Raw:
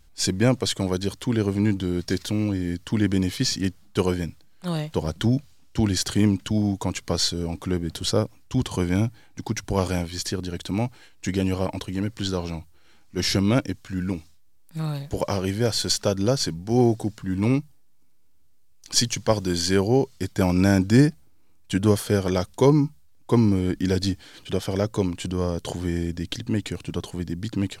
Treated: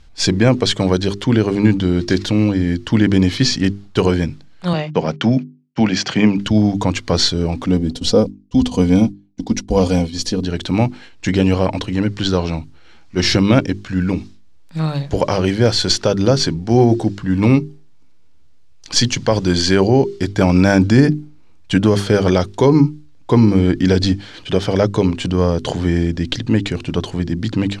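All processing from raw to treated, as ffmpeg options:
-filter_complex "[0:a]asettb=1/sr,asplit=3[a][b][c];[a]atrim=end=4.734[d];[b]atrim=start=4.73:end=6.38,asetpts=PTS-STARTPTS,afade=t=in:d=0.004:c=qsin,afade=t=out:st=1.646:d=0.004:c=qsin,agate=range=-39dB:threshold=-38dB:ratio=16:release=100:detection=peak,highpass=f=140:w=0.5412,highpass=f=140:w=1.3066,equalizer=f=340:t=q:w=4:g=-6,equalizer=f=710:t=q:w=4:g=3,equalizer=f=2.4k:t=q:w=4:g=6,equalizer=f=3.9k:t=q:w=4:g=-7,lowpass=f=6.2k:w=0.5412,lowpass=f=6.2k:w=1.3066[e];[c]atrim=start=6.376[f];[d][e]acrossfade=d=0.004:c1=hsin:c2=qsin[g];[g][f]acrossfade=d=0.004:c1=qsin:c2=hsin,asettb=1/sr,asplit=3[h][i][j];[h]atrim=end=7.664[k];[i]atrim=start=7.66:end=10.45,asetpts=PTS-STARTPTS,afade=t=in:d=0.004:c=qsin,afade=t=out:st=2.786:d=0.004:c=qsin,equalizer=f=1.6k:t=o:w=1.5:g=-11.5,aecho=1:1:4.1:0.68,atrim=end_sample=123039,agate=range=-33dB:threshold=-32dB:ratio=3:release=100:detection=peak[l];[j]atrim=start=10.446[m];[k][l]acrossfade=d=0.004:c1=hsin:c2=qsin[n];[n][m]acrossfade=d=0.004:c1=qsin:c2=hsin,lowpass=5k,bandreject=f=50:t=h:w=6,bandreject=f=100:t=h:w=6,bandreject=f=150:t=h:w=6,bandreject=f=200:t=h:w=6,bandreject=f=250:t=h:w=6,bandreject=f=300:t=h:w=6,bandreject=f=350:t=h:w=6,bandreject=f=400:t=h:w=6,alimiter=level_in=11dB:limit=-1dB:release=50:level=0:latency=1,volume=-1dB"

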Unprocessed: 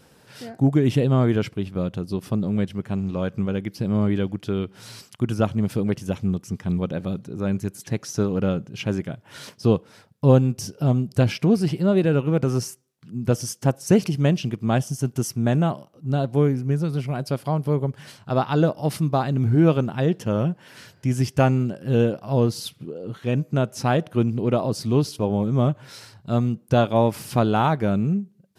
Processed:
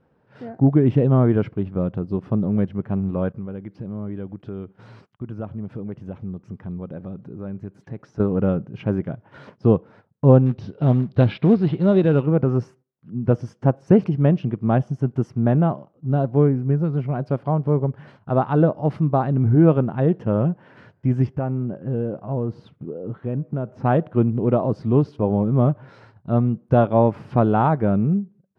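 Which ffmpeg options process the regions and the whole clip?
-filter_complex "[0:a]asettb=1/sr,asplit=3[a][b][c];[a]atrim=end=3.324[d];[b]atrim=start=3.32:end=8.2,asetpts=PTS-STARTPTS,afade=t=in:d=0.004:c=qsin,afade=t=out:st=4.876:d=0.004:c=qsin,acompressor=threshold=-38dB:ratio=2:attack=3.2:release=140:knee=1:detection=peak,agate=range=-14dB:threshold=-50dB:ratio=16:release=100:detection=peak[e];[c]atrim=start=8.196[f];[d][e]acrossfade=d=0.004:c1=hsin:c2=qsin[g];[g][f]acrossfade=d=0.004:c1=qsin:c2=hsin,asettb=1/sr,asplit=3[h][i][j];[h]atrim=end=10.464[k];[i]atrim=start=10.46:end=12.26,asetpts=PTS-STARTPTS,afade=t=in:d=0.004:c=qsin,afade=t=out:st=1.796:d=0.004:c=qsin,lowpass=f=3.8k:t=q:w=6.1,acrusher=bits=5:mode=log:mix=0:aa=0.000001[l];[j]atrim=start=12.256[m];[k][l]acrossfade=d=0.004:c1=hsin:c2=qsin[n];[n][m]acrossfade=d=0.004:c1=qsin:c2=hsin,asettb=1/sr,asplit=3[o][p][q];[o]atrim=end=21.274[r];[p]atrim=start=21.27:end=23.85,asetpts=PTS-STARTPTS,afade=t=in:d=0.004:c=qsin,afade=t=out:st=2.576:d=0.004:c=qsin,acompressor=threshold=-24dB:ratio=3:attack=3.2:release=140:knee=1:detection=peak,highshelf=f=2.6k:g=-10[s];[q]atrim=start=23.846[t];[r][s]acrossfade=d=0.004:c1=hsin:c2=qsin[u];[u][t]acrossfade=d=0.004:c1=qsin:c2=hsin,agate=range=-10dB:threshold=-46dB:ratio=16:detection=peak,lowpass=1.3k,volume=2.5dB"

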